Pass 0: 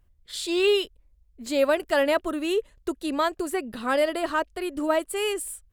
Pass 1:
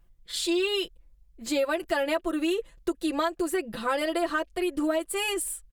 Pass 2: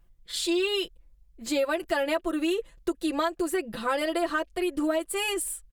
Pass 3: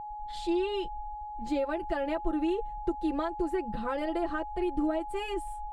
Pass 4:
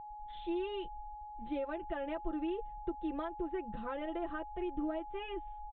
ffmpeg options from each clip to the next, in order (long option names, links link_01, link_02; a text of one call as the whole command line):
ffmpeg -i in.wav -af "aecho=1:1:5.9:0.85,acompressor=threshold=-23dB:ratio=6" out.wav
ffmpeg -i in.wav -af anull out.wav
ffmpeg -i in.wav -af "agate=range=-19dB:threshold=-54dB:ratio=16:detection=peak,aeval=exprs='val(0)+0.0282*sin(2*PI*840*n/s)':channel_layout=same,aemphasis=mode=reproduction:type=riaa,volume=-7dB" out.wav
ffmpeg -i in.wav -af "aresample=8000,aresample=44100,volume=-7.5dB" out.wav